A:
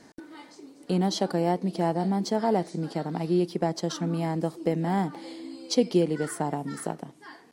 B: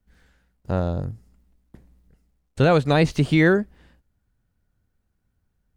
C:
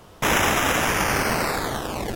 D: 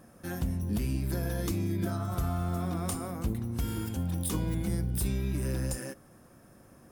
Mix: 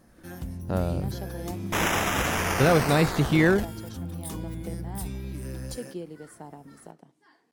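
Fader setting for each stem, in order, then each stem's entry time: -14.5, -3.5, -5.5, -4.5 dB; 0.00, 0.00, 1.50, 0.00 s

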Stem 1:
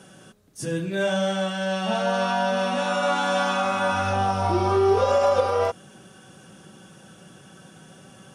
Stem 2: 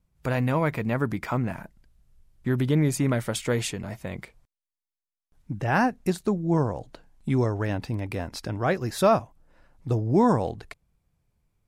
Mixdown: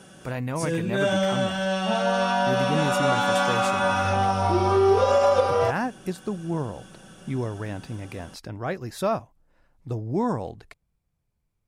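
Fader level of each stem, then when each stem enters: +0.5, -5.0 dB; 0.00, 0.00 s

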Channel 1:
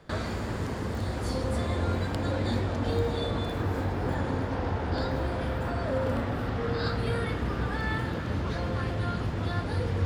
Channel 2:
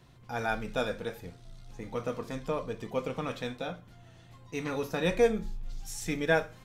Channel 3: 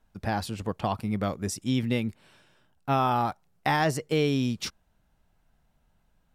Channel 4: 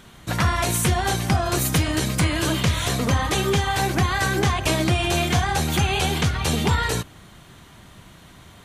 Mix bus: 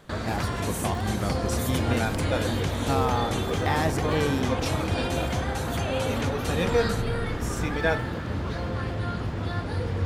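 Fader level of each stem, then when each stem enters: +0.5, +0.5, -2.5, -11.0 dB; 0.00, 1.55, 0.00, 0.00 s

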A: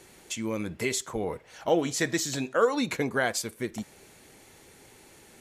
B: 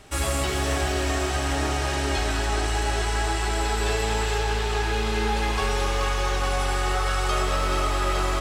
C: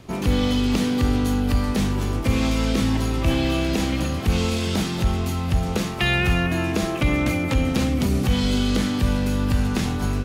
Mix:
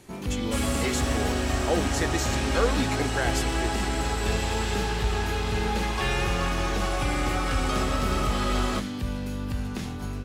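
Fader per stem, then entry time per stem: -2.5, -3.5, -9.5 dB; 0.00, 0.40, 0.00 s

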